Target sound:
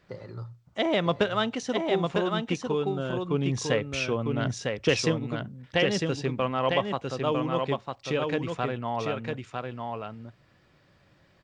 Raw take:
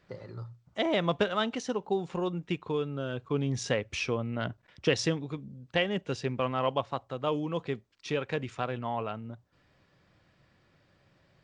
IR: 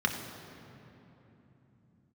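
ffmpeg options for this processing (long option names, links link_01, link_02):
-af "aecho=1:1:952:0.631,volume=2.5dB"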